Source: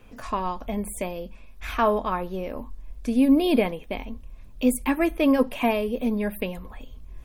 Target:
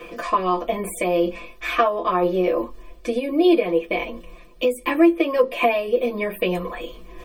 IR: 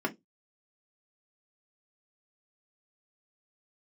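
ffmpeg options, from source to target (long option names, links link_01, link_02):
-filter_complex "[0:a]areverse,acompressor=mode=upward:threshold=-24dB:ratio=2.5,areverse[link_01];[1:a]atrim=start_sample=2205,asetrate=70560,aresample=44100[link_02];[link_01][link_02]afir=irnorm=-1:irlink=0,acompressor=threshold=-17dB:ratio=10,highshelf=frequency=3500:gain=9,aecho=1:1:5.8:1"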